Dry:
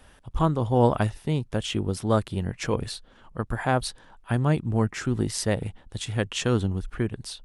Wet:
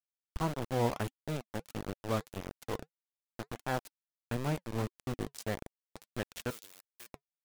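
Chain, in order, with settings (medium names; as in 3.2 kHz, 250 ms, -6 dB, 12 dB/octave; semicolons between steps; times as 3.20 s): small samples zeroed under -22.5 dBFS; 6.50–7.08 s: differentiator; flange 1.6 Hz, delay 0.1 ms, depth 3.6 ms, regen -74%; trim -6 dB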